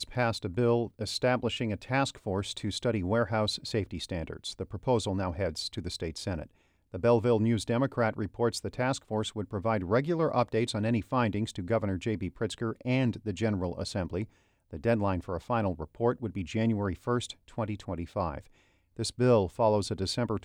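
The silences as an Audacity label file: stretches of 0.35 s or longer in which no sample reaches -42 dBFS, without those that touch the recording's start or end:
6.460000	6.940000	silence
14.250000	14.730000	silence
18.400000	18.990000	silence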